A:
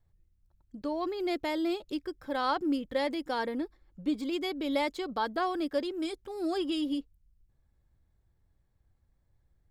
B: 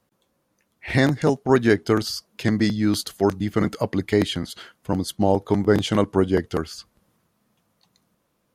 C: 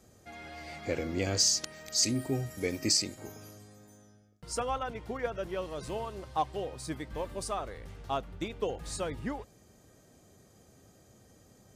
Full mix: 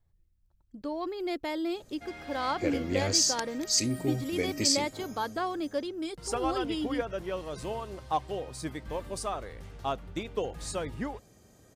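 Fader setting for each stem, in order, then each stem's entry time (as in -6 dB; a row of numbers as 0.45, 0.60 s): -1.5 dB, off, +1.0 dB; 0.00 s, off, 1.75 s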